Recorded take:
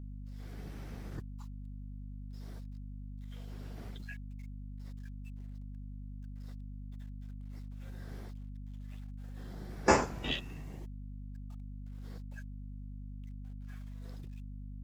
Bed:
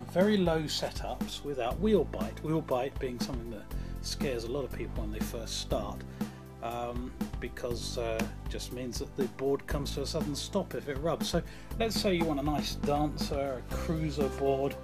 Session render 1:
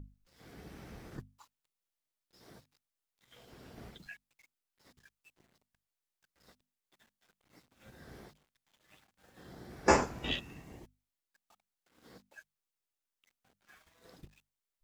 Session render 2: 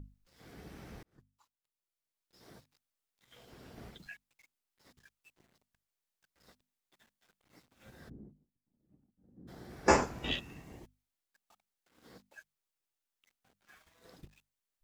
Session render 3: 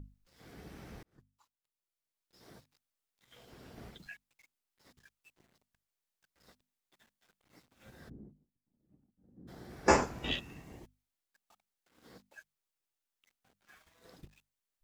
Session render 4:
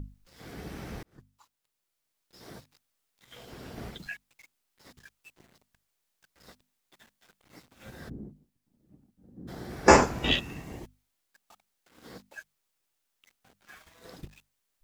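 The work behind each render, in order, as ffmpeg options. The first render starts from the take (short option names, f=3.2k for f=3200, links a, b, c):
-af "bandreject=f=50:t=h:w=6,bandreject=f=100:t=h:w=6,bandreject=f=150:t=h:w=6,bandreject=f=200:t=h:w=6,bandreject=f=250:t=h:w=6"
-filter_complex "[0:a]asplit=3[a][b][c];[a]afade=t=out:st=8.08:d=0.02[d];[b]lowpass=f=250:t=q:w=2.1,afade=t=in:st=8.08:d=0.02,afade=t=out:st=9.47:d=0.02[e];[c]afade=t=in:st=9.47:d=0.02[f];[d][e][f]amix=inputs=3:normalize=0,asplit=2[g][h];[g]atrim=end=1.03,asetpts=PTS-STARTPTS,afade=t=out:st=1.026:d=0.004:c=hsin[i];[h]atrim=start=1.03,asetpts=PTS-STARTPTS,afade=t=in:d=1.42[j];[i][j]concat=n=2:v=0:a=1"
-af anull
-af "volume=9.5dB,alimiter=limit=-2dB:level=0:latency=1"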